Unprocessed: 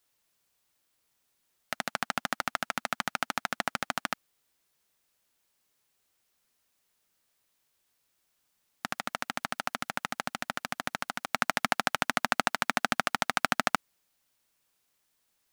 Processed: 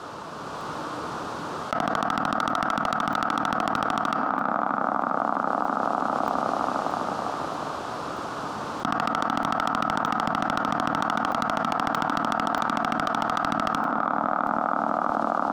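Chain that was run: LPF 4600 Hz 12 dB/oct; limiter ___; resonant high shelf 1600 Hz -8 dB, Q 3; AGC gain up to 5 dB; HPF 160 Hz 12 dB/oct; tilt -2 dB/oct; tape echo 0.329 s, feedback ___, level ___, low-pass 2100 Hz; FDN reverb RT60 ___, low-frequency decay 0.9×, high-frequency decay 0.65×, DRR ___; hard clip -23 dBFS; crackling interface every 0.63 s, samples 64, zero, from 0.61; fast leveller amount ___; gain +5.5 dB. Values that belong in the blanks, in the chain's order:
-13 dBFS, 77%, -18 dB, 0.98 s, 11.5 dB, 100%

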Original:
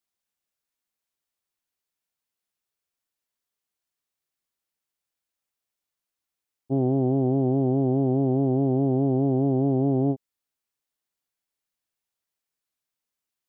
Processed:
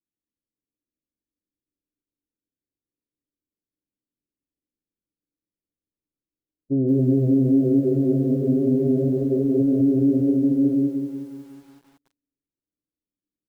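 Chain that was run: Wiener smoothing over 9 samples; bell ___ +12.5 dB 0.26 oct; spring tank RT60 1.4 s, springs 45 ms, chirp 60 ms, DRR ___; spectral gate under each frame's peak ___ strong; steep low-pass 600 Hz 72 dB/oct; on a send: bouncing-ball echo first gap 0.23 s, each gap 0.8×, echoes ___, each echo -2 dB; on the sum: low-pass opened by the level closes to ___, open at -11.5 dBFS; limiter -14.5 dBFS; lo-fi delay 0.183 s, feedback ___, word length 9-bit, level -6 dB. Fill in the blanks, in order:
300 Hz, 7 dB, -25 dB, 5, 380 Hz, 55%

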